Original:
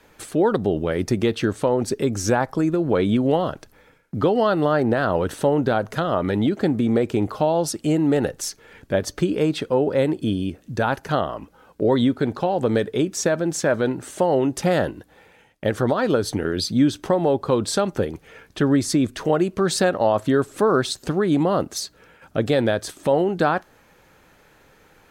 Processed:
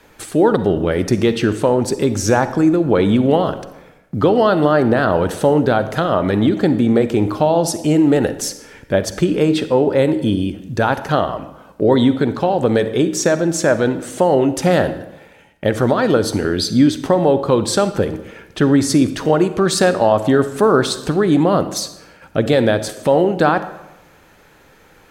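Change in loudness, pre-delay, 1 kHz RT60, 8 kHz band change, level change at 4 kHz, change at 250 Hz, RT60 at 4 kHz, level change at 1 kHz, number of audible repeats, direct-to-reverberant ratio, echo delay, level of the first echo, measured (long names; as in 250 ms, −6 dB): +5.5 dB, 39 ms, 0.95 s, +5.0 dB, +5.0 dB, +5.5 dB, 0.70 s, +5.5 dB, no echo audible, 11.5 dB, no echo audible, no echo audible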